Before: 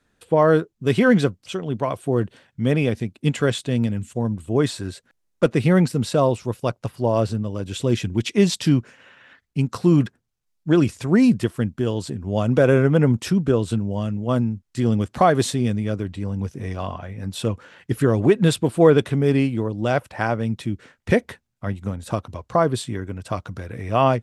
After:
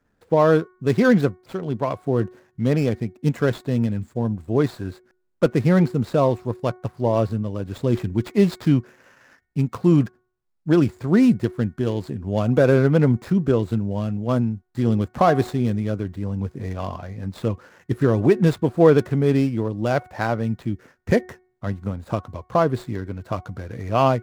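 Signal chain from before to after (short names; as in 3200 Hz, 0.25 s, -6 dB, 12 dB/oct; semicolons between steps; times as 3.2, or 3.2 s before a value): median filter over 15 samples; de-hum 367 Hz, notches 6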